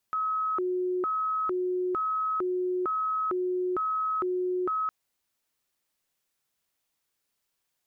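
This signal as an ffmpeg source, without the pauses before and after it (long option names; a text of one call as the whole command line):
ffmpeg -f lavfi -i "aevalsrc='0.0531*sin(2*PI*(822*t+458/1.1*(0.5-abs(mod(1.1*t,1)-0.5))))':duration=4.76:sample_rate=44100" out.wav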